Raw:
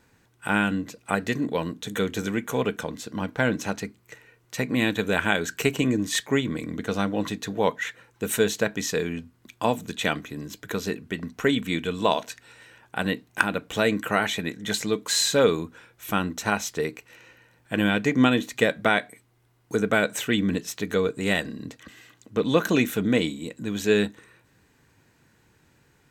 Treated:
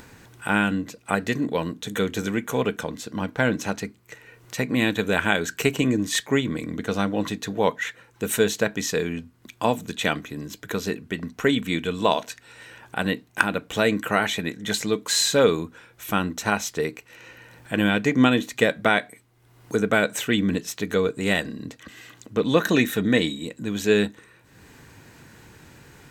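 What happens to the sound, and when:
22.57–23.45 small resonant body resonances 1800/3800 Hz, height 14 dB
whole clip: upward compressor, threshold -38 dBFS; gain +1.5 dB

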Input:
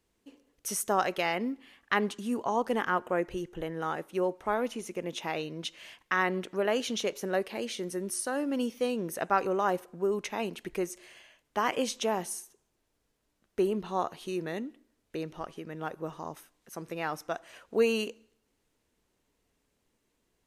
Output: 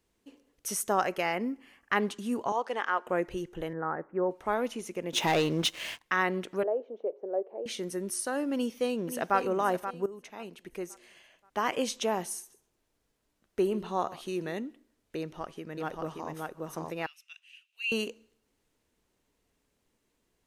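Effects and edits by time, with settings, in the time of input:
1–1.96 bell 3700 Hz -13 dB 0.34 oct
2.52–3.07 BPF 520–6400 Hz
3.73–4.31 steep low-pass 1900 Hz 48 dB/oct
5.13–6.03 sample leveller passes 3
6.63–7.66 Butterworth band-pass 520 Hz, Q 1.5
8.54–9.37 echo throw 0.53 s, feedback 35%, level -10 dB
10.06–11.88 fade in, from -15.5 dB
12.39–14.53 echo 0.134 s -17.5 dB
15.19–16.32 echo throw 0.58 s, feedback 10%, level -2 dB
17.06–17.92 ladder high-pass 2600 Hz, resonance 85%

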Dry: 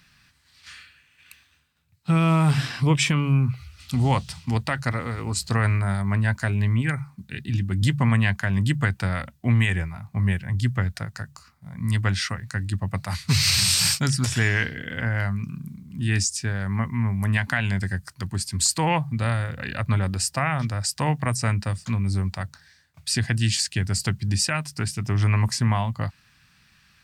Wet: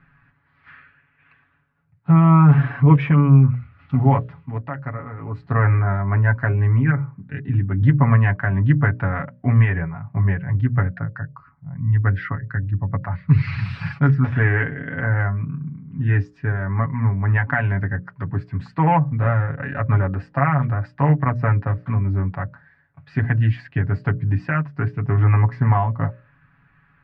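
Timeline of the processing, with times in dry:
3.98–5.66 dip -8.5 dB, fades 0.49 s
10.93–13.96 formant sharpening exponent 1.5
whole clip: LPF 1700 Hz 24 dB/oct; notches 60/120/180/240/300/360/420/480/540/600 Hz; comb 7.1 ms, depth 79%; gain +3.5 dB

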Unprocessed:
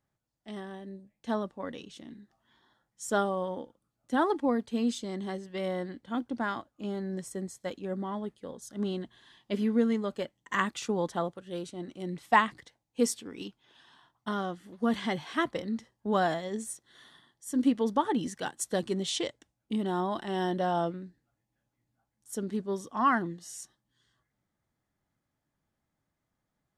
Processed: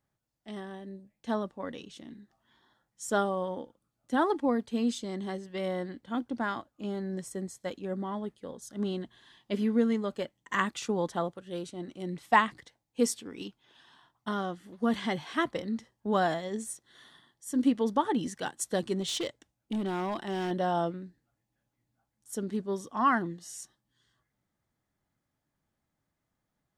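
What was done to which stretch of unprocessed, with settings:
19–20.51 overloaded stage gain 27.5 dB

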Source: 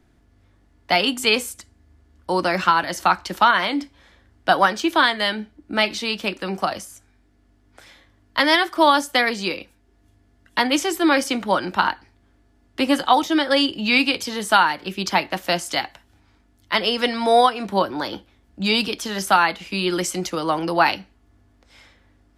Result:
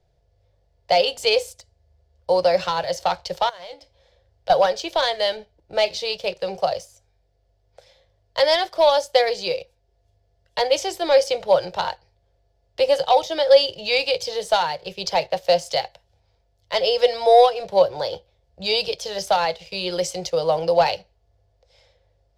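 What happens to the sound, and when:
3.49–4.5 compressor 10:1, threshold -31 dBFS
whole clip: bell 960 Hz +5.5 dB 1.7 oct; sample leveller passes 1; EQ curve 160 Hz 0 dB, 250 Hz -29 dB, 510 Hz +8 dB, 1200 Hz -17 dB, 4800 Hz +2 dB, 9700 Hz -10 dB; gain -3.5 dB

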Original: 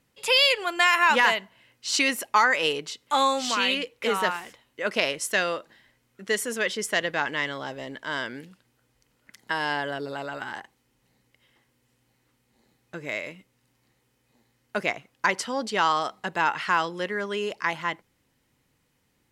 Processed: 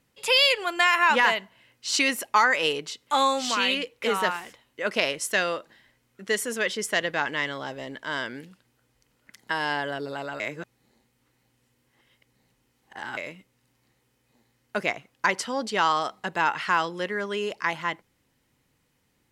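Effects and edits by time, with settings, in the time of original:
0.81–1.36 high shelf 4700 Hz -4.5 dB
10.4–13.17 reverse

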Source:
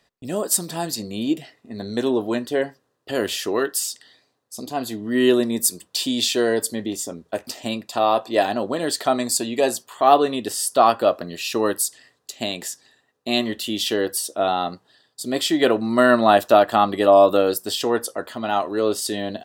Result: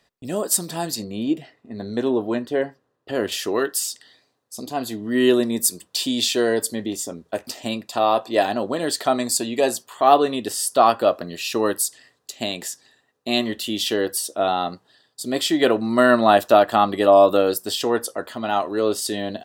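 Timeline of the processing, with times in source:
1.04–3.32 high shelf 3800 Hz -11 dB

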